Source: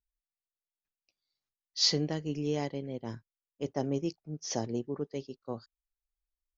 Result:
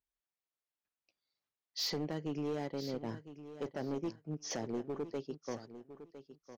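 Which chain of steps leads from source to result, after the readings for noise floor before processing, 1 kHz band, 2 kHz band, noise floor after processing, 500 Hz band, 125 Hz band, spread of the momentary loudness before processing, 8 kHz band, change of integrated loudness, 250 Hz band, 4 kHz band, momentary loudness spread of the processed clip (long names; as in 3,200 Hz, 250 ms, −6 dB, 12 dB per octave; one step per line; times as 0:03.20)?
below −85 dBFS, −3.5 dB, −3.0 dB, below −85 dBFS, −4.0 dB, −7.0 dB, 16 LU, can't be measured, −6.0 dB, −4.5 dB, −9.0 dB, 16 LU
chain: high-pass filter 200 Hz 6 dB per octave
high-shelf EQ 4,100 Hz −12 dB
downward compressor 2.5 to 1, threshold −37 dBFS, peak gain reduction 7 dB
gain into a clipping stage and back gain 35 dB
repeating echo 1,007 ms, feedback 18%, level −13 dB
level +3.5 dB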